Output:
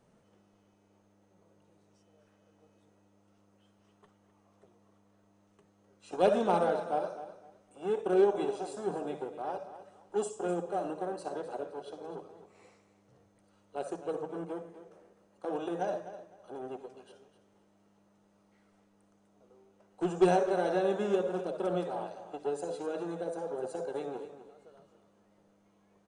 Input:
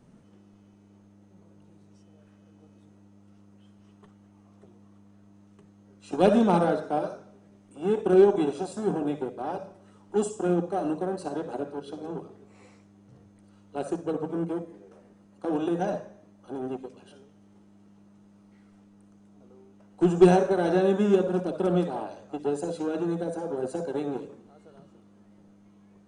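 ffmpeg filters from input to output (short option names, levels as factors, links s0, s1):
-af "lowshelf=f=370:t=q:w=1.5:g=-6.5,aecho=1:1:255|510|765:0.224|0.0515|0.0118,volume=0.562"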